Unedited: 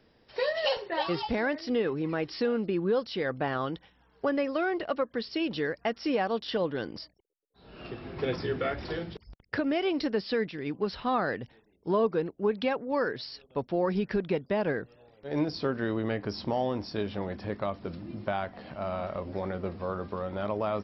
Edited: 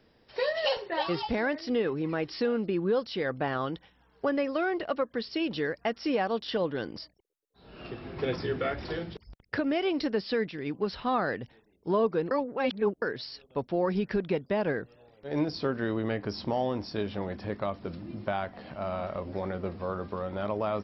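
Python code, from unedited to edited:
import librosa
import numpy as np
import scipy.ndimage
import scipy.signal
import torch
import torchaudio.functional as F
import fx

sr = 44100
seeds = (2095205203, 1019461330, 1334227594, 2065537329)

y = fx.edit(x, sr, fx.reverse_span(start_s=12.31, length_s=0.71), tone=tone)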